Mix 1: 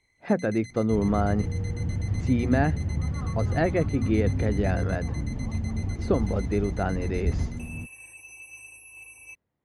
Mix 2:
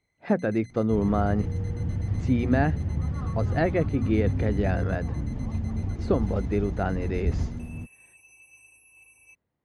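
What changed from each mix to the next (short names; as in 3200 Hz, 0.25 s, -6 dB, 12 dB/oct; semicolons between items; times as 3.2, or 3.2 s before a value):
first sound -9.0 dB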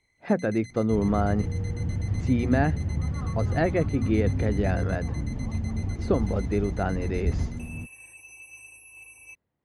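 first sound +7.5 dB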